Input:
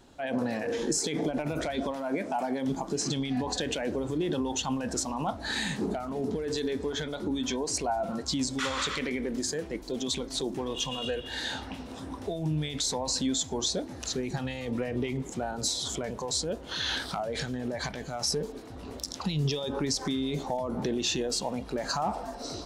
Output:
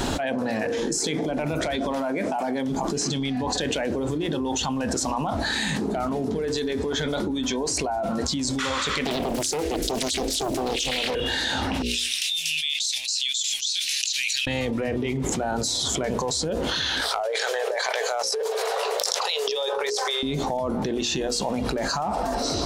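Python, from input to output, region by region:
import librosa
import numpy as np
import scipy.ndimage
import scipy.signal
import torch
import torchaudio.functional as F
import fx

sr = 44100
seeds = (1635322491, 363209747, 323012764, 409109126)

y = fx.chain(x, sr, fx.high_shelf(hz=5100.0, db=9.0),
    fx.fixed_phaser(hz=410.0, stages=4),
    fx.doppler_dist(depth_ms=0.89), at=(9.05, 11.15))
y = fx.chain(y, sr, fx.ellip_highpass(hz=2600.0, order=4, stop_db=60),
    fx.high_shelf(hz=3900.0, db=-9.0), at=(11.82, 14.47))
y = fx.chain(y, sr, fx.brickwall_highpass(low_hz=400.0),
    fx.over_compress(threshold_db=-38.0, ratio=-0.5), at=(17.01, 20.23))
y = fx.hum_notches(y, sr, base_hz=60, count=9)
y = fx.env_flatten(y, sr, amount_pct=100)
y = y * librosa.db_to_amplitude(-1.0)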